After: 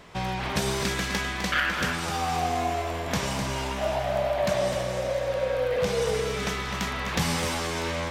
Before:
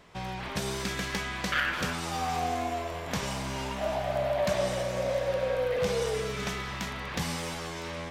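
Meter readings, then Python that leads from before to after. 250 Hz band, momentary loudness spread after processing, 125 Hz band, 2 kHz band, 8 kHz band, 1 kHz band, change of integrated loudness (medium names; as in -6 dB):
+4.0 dB, 4 LU, +4.5 dB, +4.0 dB, +5.0 dB, +4.0 dB, +4.0 dB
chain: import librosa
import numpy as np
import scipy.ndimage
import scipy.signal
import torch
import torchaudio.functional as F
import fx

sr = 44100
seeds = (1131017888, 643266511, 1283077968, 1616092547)

p1 = fx.rider(x, sr, range_db=5, speed_s=2.0)
p2 = p1 + fx.echo_single(p1, sr, ms=255, db=-8.5, dry=0)
y = p2 * librosa.db_to_amplitude(3.0)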